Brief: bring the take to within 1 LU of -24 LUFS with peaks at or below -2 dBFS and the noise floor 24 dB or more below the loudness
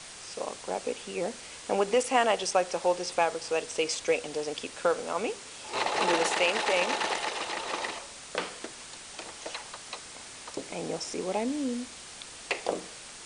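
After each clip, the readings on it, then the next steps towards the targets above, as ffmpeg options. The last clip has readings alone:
noise floor -46 dBFS; noise floor target -55 dBFS; loudness -30.5 LUFS; peak level -11.5 dBFS; loudness target -24.0 LUFS
-> -af "afftdn=nr=9:nf=-46"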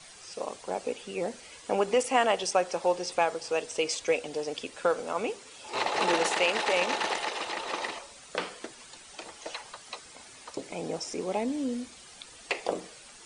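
noise floor -50 dBFS; noise floor target -54 dBFS
-> -af "afftdn=nr=6:nf=-50"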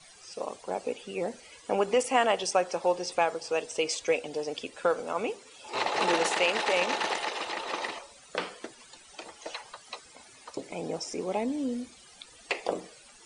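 noise floor -54 dBFS; loudness -30.0 LUFS; peak level -11.5 dBFS; loudness target -24.0 LUFS
-> -af "volume=2"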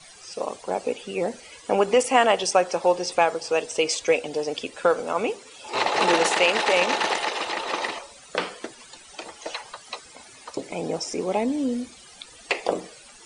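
loudness -24.0 LUFS; peak level -5.5 dBFS; noise floor -48 dBFS

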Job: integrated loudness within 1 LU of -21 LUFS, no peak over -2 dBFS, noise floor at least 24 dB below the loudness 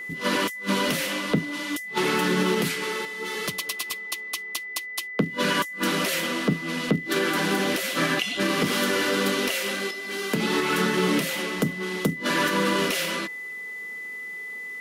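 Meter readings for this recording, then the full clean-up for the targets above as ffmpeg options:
steady tone 2 kHz; tone level -33 dBFS; loudness -25.5 LUFS; peak level -10.0 dBFS; loudness target -21.0 LUFS
-> -af "bandreject=f=2000:w=30"
-af "volume=1.68"

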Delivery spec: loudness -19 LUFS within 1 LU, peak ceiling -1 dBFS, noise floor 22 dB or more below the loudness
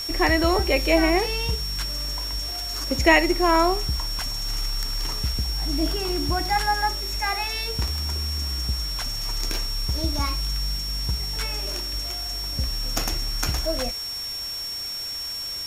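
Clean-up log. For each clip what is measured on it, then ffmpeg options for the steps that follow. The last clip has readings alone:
steady tone 5.5 kHz; tone level -29 dBFS; noise floor -31 dBFS; noise floor target -47 dBFS; loudness -24.5 LUFS; peak level -3.5 dBFS; loudness target -19.0 LUFS
-> -af "bandreject=f=5500:w=30"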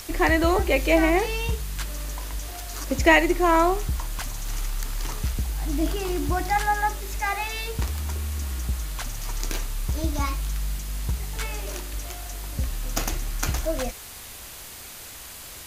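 steady tone not found; noise floor -41 dBFS; noise floor target -48 dBFS
-> -af "afftdn=nr=7:nf=-41"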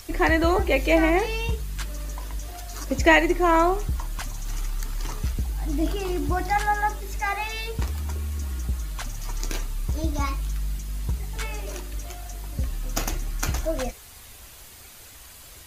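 noise floor -46 dBFS; noise floor target -48 dBFS
-> -af "afftdn=nr=6:nf=-46"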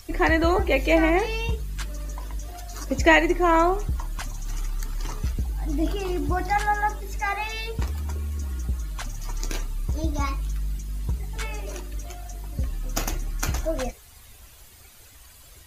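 noise floor -49 dBFS; loudness -26.0 LUFS; peak level -4.0 dBFS; loudness target -19.0 LUFS
-> -af "volume=2.24,alimiter=limit=0.891:level=0:latency=1"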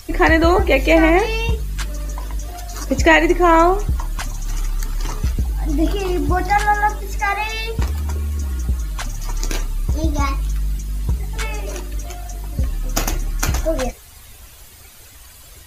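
loudness -19.5 LUFS; peak level -1.0 dBFS; noise floor -42 dBFS

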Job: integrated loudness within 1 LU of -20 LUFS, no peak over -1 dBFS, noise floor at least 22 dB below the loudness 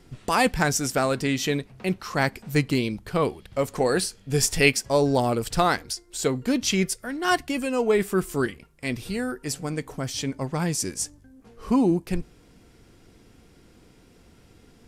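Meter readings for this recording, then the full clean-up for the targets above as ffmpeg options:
loudness -25.0 LUFS; peak level -3.5 dBFS; loudness target -20.0 LUFS
-> -af "volume=1.78,alimiter=limit=0.891:level=0:latency=1"

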